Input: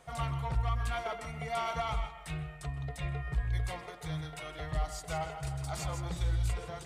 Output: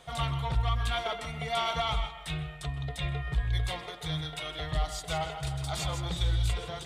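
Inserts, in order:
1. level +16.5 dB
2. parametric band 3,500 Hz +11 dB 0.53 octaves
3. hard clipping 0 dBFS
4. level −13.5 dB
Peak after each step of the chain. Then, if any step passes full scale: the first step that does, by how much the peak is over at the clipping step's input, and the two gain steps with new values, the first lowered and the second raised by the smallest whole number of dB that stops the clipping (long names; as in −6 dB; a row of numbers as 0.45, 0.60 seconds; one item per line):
−4.5, −3.5, −3.5, −17.0 dBFS
no step passes full scale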